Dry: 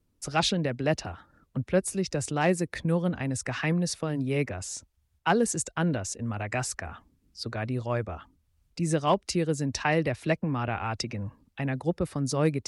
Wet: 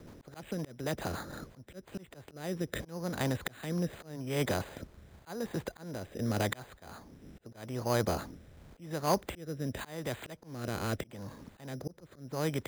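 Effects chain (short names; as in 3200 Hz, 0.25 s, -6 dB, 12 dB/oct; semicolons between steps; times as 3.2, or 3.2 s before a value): per-bin compression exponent 0.6; rotary speaker horn 7.5 Hz, later 0.85 Hz, at 1.01; in parallel at -2.5 dB: compressor 16:1, threshold -38 dBFS, peak gain reduction 22 dB; on the sum: auto swell 0.58 s; careless resampling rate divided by 8×, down filtered, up hold; gain -2.5 dB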